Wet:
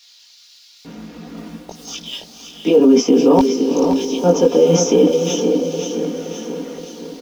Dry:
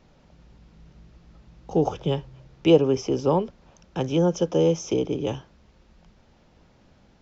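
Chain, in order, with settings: comb 4.2 ms, depth 71%; reverse; compressor 16:1, threshold -28 dBFS, peak gain reduction 21.5 dB; reverse; companded quantiser 8-bit; LFO high-pass square 0.59 Hz 270–4300 Hz; on a send: diffused feedback echo 0.487 s, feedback 49%, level -10.5 dB; on the sum: chorus voices 6, 1.5 Hz, delay 20 ms, depth 3 ms; maximiser +23.5 dB; lo-fi delay 0.522 s, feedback 55%, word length 7-bit, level -8 dB; gain -2.5 dB

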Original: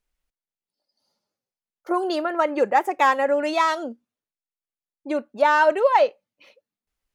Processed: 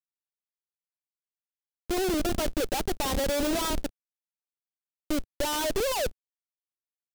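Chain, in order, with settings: Schmitt trigger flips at -24 dBFS; requantised 8-bit, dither none; graphic EQ 125/1000/2000 Hz -7/-7/-5 dB

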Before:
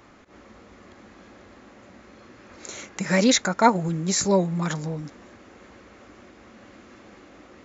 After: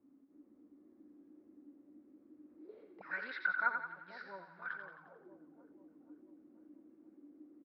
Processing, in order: auto-wah 250–1500 Hz, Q 15, up, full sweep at -24.5 dBFS; downsampling 11025 Hz; split-band echo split 700 Hz, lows 0.486 s, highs 88 ms, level -6.5 dB

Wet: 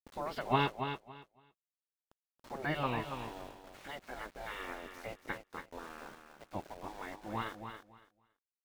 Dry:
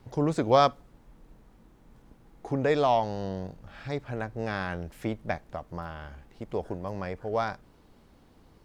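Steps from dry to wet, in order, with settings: nonlinear frequency compression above 1800 Hz 1.5:1; vibrato 4.2 Hz 11 cents; spectral gate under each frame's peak -10 dB weak; sample gate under -49 dBFS; on a send: feedback echo 0.28 s, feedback 19%, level -8 dB; on the sum: gain -2 dB

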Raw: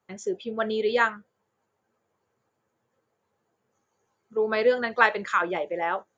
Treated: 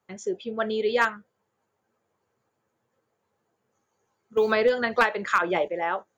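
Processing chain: one-sided fold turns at -13 dBFS; 4.37–5.68 three-band squash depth 100%

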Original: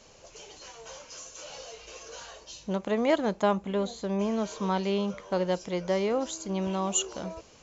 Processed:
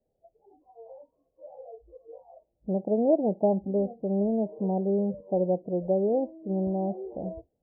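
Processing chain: spectral noise reduction 23 dB; steep low-pass 780 Hz 72 dB/oct; gain +2.5 dB

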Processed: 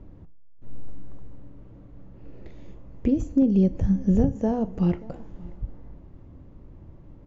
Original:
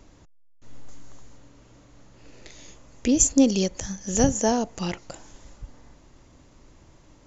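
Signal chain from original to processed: 3.42–4.29 low shelf 460 Hz +6 dB; compressor 6:1, threshold -22 dBFS, peak gain reduction 13 dB; reverb, pre-delay 3 ms, DRR 11 dB; overloaded stage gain 16.5 dB; LPF 2700 Hz 12 dB/oct; tilt shelf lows +9.5 dB, about 650 Hz; outdoor echo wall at 100 m, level -22 dB; gain -1 dB

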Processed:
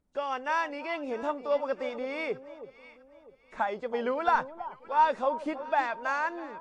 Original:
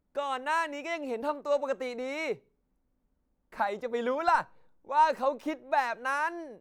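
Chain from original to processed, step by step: nonlinear frequency compression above 2700 Hz 1.5:1; echo with dull and thin repeats by turns 0.325 s, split 1000 Hz, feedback 58%, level -12 dB

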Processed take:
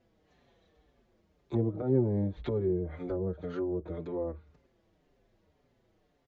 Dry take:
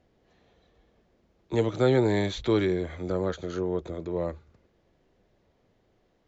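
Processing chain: treble ducked by the level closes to 450 Hz, closed at -23.5 dBFS; endless flanger 5.5 ms -1.9 Hz

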